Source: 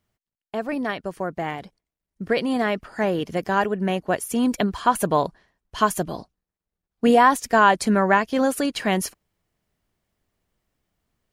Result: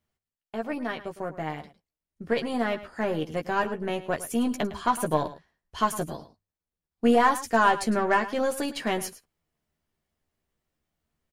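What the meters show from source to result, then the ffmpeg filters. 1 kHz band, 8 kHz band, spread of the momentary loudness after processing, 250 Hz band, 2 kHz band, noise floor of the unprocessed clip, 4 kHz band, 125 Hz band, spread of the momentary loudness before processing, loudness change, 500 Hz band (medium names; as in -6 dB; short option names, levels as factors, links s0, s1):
-5.0 dB, -5.0 dB, 14 LU, -5.5 dB, -5.0 dB, under -85 dBFS, -5.0 dB, -6.0 dB, 14 LU, -5.0 dB, -4.5 dB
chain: -filter_complex "[0:a]bandreject=f=50:t=h:w=6,bandreject=f=100:t=h:w=6,aeval=exprs='0.668*(cos(1*acos(clip(val(0)/0.668,-1,1)))-cos(1*PI/2))+0.0211*(cos(8*acos(clip(val(0)/0.668,-1,1)))-cos(8*PI/2))':c=same,asplit=2[s0][s1];[s1]adelay=13,volume=0.562[s2];[s0][s2]amix=inputs=2:normalize=0,aecho=1:1:107:0.178,volume=0.473"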